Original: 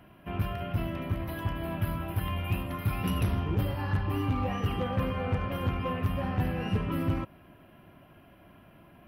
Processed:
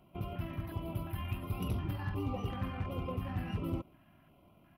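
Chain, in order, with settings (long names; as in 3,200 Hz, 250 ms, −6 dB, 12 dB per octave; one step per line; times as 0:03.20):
dynamic equaliser 380 Hz, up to +4 dB, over −51 dBFS, Q 2.1
tempo change 1.9×
auto-filter notch square 1.4 Hz 460–1,700 Hz
level −6.5 dB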